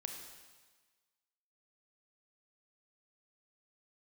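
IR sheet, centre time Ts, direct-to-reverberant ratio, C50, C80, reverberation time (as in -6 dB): 44 ms, 3.0 dB, 4.5 dB, 6.0 dB, 1.4 s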